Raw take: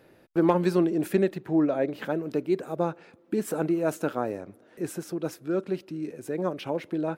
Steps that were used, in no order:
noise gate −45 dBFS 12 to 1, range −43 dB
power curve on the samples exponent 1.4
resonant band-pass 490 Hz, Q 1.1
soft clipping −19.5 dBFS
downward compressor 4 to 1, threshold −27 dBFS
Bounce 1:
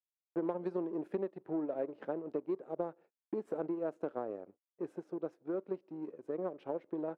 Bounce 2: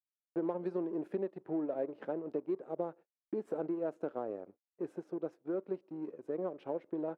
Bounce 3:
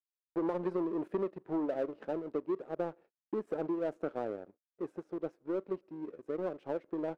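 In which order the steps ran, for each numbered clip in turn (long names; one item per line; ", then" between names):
noise gate, then downward compressor, then power curve on the samples, then resonant band-pass, then soft clipping
downward compressor, then soft clipping, then noise gate, then power curve on the samples, then resonant band-pass
noise gate, then soft clipping, then resonant band-pass, then downward compressor, then power curve on the samples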